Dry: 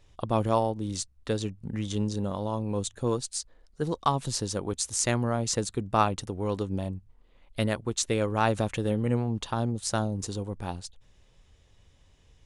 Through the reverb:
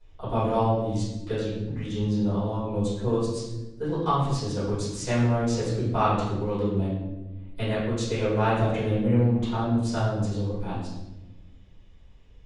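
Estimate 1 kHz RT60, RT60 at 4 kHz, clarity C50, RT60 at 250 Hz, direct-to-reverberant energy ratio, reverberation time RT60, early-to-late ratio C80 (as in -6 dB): 0.85 s, 0.75 s, 0.5 dB, 1.8 s, -14.5 dB, 1.1 s, 3.5 dB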